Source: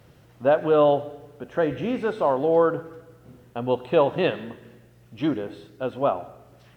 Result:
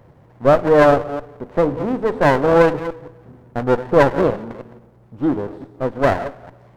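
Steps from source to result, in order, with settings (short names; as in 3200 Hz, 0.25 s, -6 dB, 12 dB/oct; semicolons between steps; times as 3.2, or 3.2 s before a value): reverse delay 0.171 s, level -13 dB; resonant high shelf 1500 Hz -13 dB, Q 3; running maximum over 17 samples; gain +4.5 dB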